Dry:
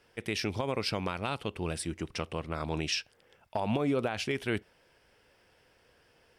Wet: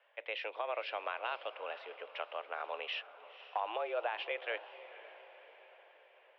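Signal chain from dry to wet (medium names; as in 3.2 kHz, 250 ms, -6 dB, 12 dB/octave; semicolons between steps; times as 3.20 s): mistuned SSB +110 Hz 420–3100 Hz; echo that smears into a reverb 512 ms, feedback 55%, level -15 dB; trim -3 dB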